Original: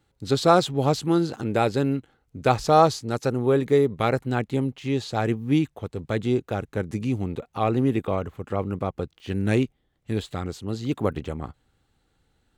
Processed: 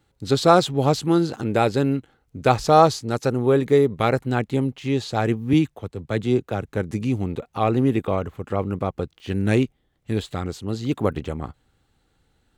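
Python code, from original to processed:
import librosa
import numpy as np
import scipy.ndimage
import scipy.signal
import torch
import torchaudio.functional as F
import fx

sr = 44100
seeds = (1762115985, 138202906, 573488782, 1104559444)

y = fx.band_widen(x, sr, depth_pct=40, at=(5.53, 6.67))
y = F.gain(torch.from_numpy(y), 2.5).numpy()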